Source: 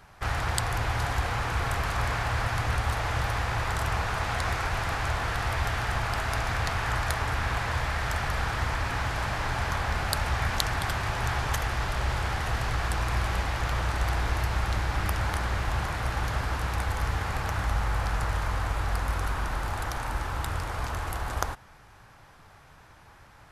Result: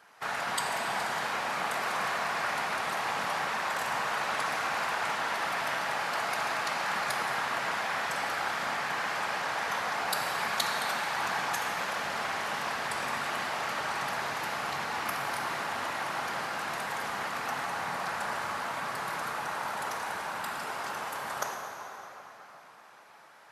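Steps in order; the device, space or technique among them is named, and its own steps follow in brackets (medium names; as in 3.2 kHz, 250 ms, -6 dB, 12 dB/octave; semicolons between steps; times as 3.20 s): whispering ghost (whisper effect; high-pass 460 Hz 12 dB/octave; reverberation RT60 3.8 s, pre-delay 3 ms, DRR 0.5 dB); trim -2.5 dB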